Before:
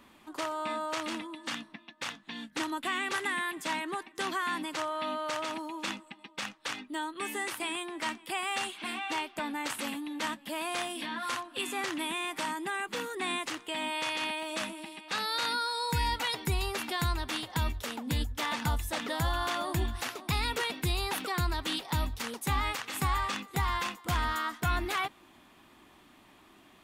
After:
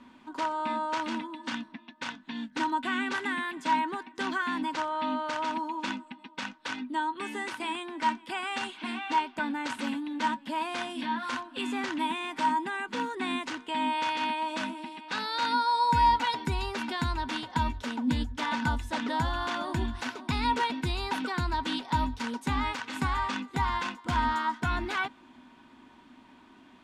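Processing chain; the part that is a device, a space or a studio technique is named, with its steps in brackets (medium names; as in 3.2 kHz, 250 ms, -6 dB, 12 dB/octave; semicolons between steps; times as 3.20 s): inside a cardboard box (low-pass 6 kHz 12 dB/octave; small resonant body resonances 250/950/1500 Hz, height 14 dB, ringing for 95 ms); trim -1 dB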